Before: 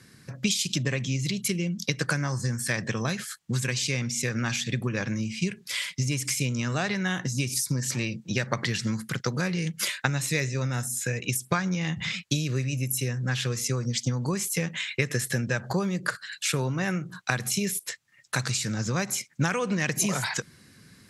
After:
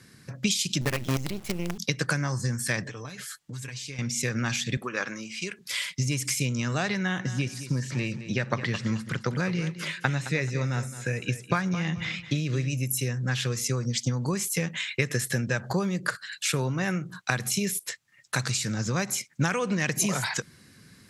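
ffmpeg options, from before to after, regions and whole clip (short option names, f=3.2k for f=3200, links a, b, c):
-filter_complex "[0:a]asettb=1/sr,asplit=3[a][b][c];[a]atrim=end=0.814[d];[b]atrim=start=0.81:end=1.78,asetpts=PTS-STARTPTS,afade=t=in:d=0.004:c=qsin,afade=t=out:st=0.966:d=0.004:c=qsin,highshelf=f=3.3k:g=-12,acrusher=bits=5:dc=4:mix=0:aa=0.000001[e];[c]atrim=start=1.776[f];[d][e]acrossfade=d=0.004:c1=hsin:c2=qsin[g];[g][f]acrossfade=d=0.004:c1=qsin:c2=hsin,asettb=1/sr,asplit=3[h][i][j];[h]atrim=end=2.834[k];[i]atrim=start=2.83:end=3.99,asetpts=PTS-STARTPTS,afade=t=in:d=0.004:c=qsin,afade=t=out:st=1.156:d=0.004:c=qsin,acompressor=threshold=-35dB:ratio=10:attack=3.2:release=140:knee=1:detection=peak,equalizer=f=160:t=o:w=0.24:g=-7,aecho=1:1:6.8:0.57,atrim=end_sample=51156[l];[j]atrim=start=3.986[m];[k][l]acrossfade=d=0.004:c1=hsin:c2=qsin[n];[n][m]acrossfade=d=0.004:c1=qsin:c2=hsin,asettb=1/sr,asplit=3[o][p][q];[o]atrim=end=4.774[r];[p]atrim=start=4.77:end=5.59,asetpts=PTS-STARTPTS,afade=t=in:d=0.004:c=qsin,afade=t=out:st=0.816:d=0.004:c=qsin,highpass=360,equalizer=f=1.3k:t=o:w=0.57:g=8[s];[q]atrim=start=5.586[t];[r][s]acrossfade=d=0.004:c1=hsin:c2=qsin[u];[u][t]acrossfade=d=0.004:c1=qsin:c2=hsin,asettb=1/sr,asplit=3[v][w][x];[v]atrim=end=6.984[y];[w]atrim=start=6.98:end=12.7,asetpts=PTS-STARTPTS,afade=t=in:d=0.004:c=qsin,afade=t=out:st=5.716:d=0.004:c=qsin,lowpass=8.8k,acrossover=split=3200[z][aa];[aa]acompressor=threshold=-42dB:ratio=4:attack=1:release=60[ab];[z][ab]amix=inputs=2:normalize=0,aecho=1:1:216|432|648:0.237|0.0545|0.0125,atrim=end_sample=252252[ac];[x]atrim=start=12.696[ad];[y][ac]acrossfade=d=0.004:c1=hsin:c2=qsin[ae];[ae][ad]acrossfade=d=0.004:c1=qsin:c2=hsin"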